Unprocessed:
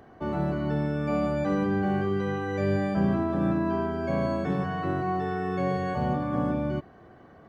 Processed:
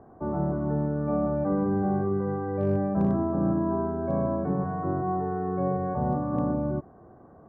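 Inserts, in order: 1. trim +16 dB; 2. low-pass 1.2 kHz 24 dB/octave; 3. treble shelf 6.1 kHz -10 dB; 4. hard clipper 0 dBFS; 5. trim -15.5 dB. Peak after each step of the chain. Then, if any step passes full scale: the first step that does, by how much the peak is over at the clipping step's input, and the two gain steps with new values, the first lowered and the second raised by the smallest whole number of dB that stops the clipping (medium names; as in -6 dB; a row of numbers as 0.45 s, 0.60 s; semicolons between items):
+3.0 dBFS, +3.0 dBFS, +3.0 dBFS, 0.0 dBFS, -15.5 dBFS; step 1, 3.0 dB; step 1 +13 dB, step 5 -12.5 dB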